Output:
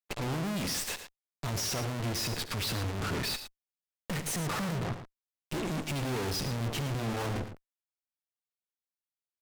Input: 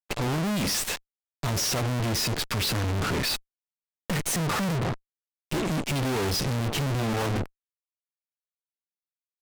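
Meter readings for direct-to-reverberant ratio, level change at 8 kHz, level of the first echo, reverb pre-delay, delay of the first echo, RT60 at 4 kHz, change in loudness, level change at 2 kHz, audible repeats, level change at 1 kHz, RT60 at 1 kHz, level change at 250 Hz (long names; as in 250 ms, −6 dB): no reverb audible, −6.0 dB, −16.5 dB, no reverb audible, 70 ms, no reverb audible, −6.0 dB, −6.0 dB, 2, −6.0 dB, no reverb audible, −6.0 dB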